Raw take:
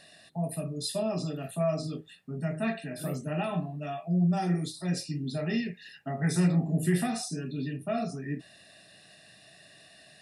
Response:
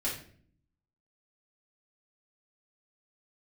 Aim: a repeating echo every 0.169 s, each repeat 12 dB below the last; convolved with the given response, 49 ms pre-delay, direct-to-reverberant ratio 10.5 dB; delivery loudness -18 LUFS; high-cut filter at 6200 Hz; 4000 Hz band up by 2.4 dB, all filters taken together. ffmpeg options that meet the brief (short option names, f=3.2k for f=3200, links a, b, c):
-filter_complex "[0:a]lowpass=6.2k,equalizer=f=4k:t=o:g=4,aecho=1:1:169|338|507:0.251|0.0628|0.0157,asplit=2[a][b];[1:a]atrim=start_sample=2205,adelay=49[c];[b][c]afir=irnorm=-1:irlink=0,volume=-15.5dB[d];[a][d]amix=inputs=2:normalize=0,volume=12.5dB"